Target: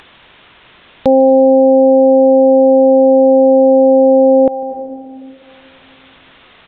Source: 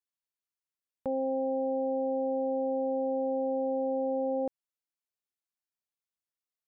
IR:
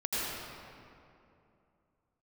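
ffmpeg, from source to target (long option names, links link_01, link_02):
-filter_complex "[0:a]aresample=8000,aresample=44100,acompressor=mode=upward:threshold=-46dB:ratio=2.5,asplit=2[link_01][link_02];[1:a]atrim=start_sample=2205,asetrate=48510,aresample=44100,adelay=149[link_03];[link_02][link_03]afir=irnorm=-1:irlink=0,volume=-23dB[link_04];[link_01][link_04]amix=inputs=2:normalize=0,alimiter=level_in=27dB:limit=-1dB:release=50:level=0:latency=1,volume=-1dB"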